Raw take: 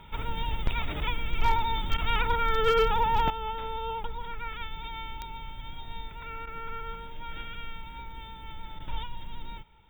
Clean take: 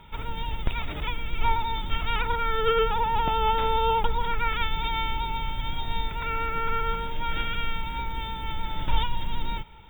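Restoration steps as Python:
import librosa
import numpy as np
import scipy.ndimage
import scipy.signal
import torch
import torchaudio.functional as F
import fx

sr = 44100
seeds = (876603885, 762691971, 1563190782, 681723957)

y = fx.fix_declip(x, sr, threshold_db=-16.0)
y = fx.fix_declick_ar(y, sr, threshold=10.0)
y = fx.fix_interpolate(y, sr, at_s=(1.97, 6.46, 8.79), length_ms=10.0)
y = fx.gain(y, sr, db=fx.steps((0.0, 0.0), (3.3, 10.5)))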